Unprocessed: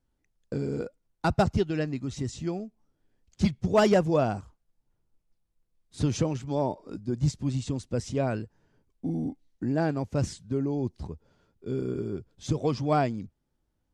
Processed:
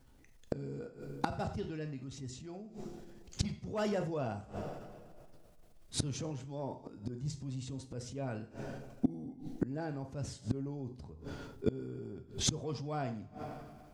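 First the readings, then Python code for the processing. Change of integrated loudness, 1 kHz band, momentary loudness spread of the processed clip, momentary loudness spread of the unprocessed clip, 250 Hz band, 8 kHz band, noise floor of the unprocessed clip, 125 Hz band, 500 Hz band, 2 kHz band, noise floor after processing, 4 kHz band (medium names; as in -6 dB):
-11.0 dB, -11.0 dB, 12 LU, 13 LU, -10.0 dB, +0.5 dB, -77 dBFS, -10.0 dB, -12.0 dB, -11.0 dB, -58 dBFS, -2.5 dB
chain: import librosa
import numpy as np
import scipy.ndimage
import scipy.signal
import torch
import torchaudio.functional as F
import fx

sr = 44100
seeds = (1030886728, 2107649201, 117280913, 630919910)

y = fx.rev_double_slope(x, sr, seeds[0], early_s=0.42, late_s=2.1, knee_db=-26, drr_db=7.0)
y = fx.transient(y, sr, attack_db=-5, sustain_db=5)
y = fx.gate_flip(y, sr, shuts_db=-30.0, range_db=-26)
y = F.gain(torch.from_numpy(y), 13.0).numpy()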